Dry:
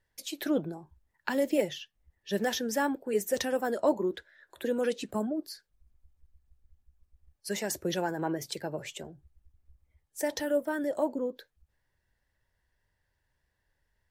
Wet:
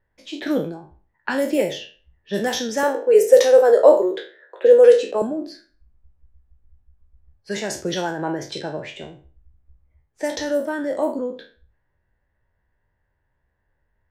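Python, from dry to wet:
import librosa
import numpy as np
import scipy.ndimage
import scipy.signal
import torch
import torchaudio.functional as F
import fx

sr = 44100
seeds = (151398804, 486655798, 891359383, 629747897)

y = fx.spec_trails(x, sr, decay_s=0.41)
y = fx.env_lowpass(y, sr, base_hz=1600.0, full_db=-23.0)
y = fx.highpass_res(y, sr, hz=480.0, q=4.9, at=(2.83, 5.22))
y = F.gain(torch.from_numpy(y), 5.5).numpy()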